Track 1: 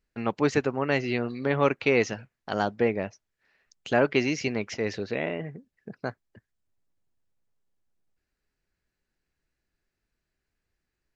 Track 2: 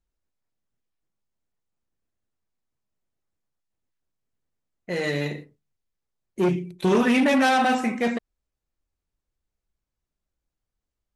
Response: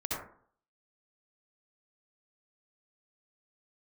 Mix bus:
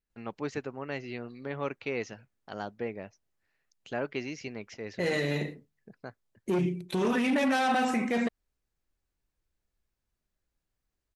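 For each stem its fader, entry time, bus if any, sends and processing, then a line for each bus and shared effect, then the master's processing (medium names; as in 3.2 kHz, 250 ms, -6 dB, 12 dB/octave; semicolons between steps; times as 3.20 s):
-11.0 dB, 0.00 s, no send, none
0.0 dB, 0.10 s, no send, none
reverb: none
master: peak limiter -19.5 dBFS, peak gain reduction 9.5 dB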